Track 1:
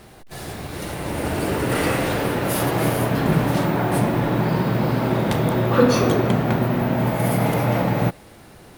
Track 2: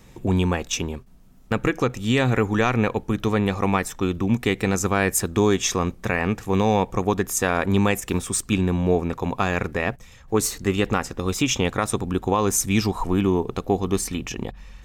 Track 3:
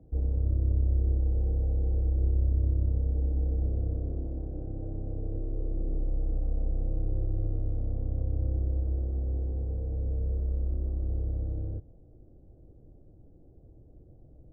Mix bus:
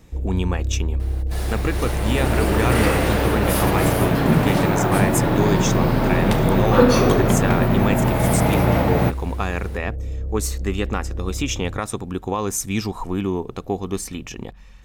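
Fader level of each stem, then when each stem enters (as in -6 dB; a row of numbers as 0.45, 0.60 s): +1.5, -3.0, +2.5 dB; 1.00, 0.00, 0.00 s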